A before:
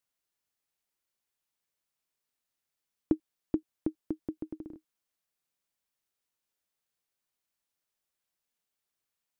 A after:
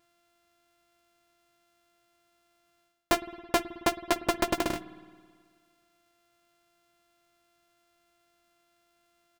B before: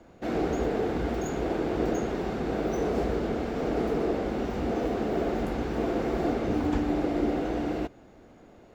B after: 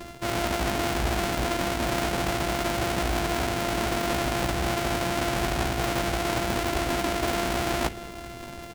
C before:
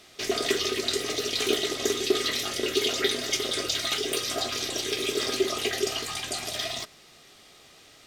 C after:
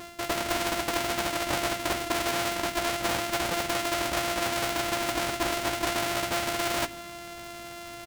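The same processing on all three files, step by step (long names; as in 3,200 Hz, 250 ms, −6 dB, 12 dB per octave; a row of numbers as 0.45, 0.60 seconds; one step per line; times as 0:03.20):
samples sorted by size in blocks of 128 samples
reversed playback
downward compressor 16 to 1, threshold −36 dBFS
reversed playback
double-tracking delay 16 ms −8 dB
spring reverb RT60 1.8 s, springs 54 ms, chirp 60 ms, DRR 14.5 dB
highs frequency-modulated by the lows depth 0.85 ms
normalise the peak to −12 dBFS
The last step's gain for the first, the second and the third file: +16.5, +14.5, +13.0 decibels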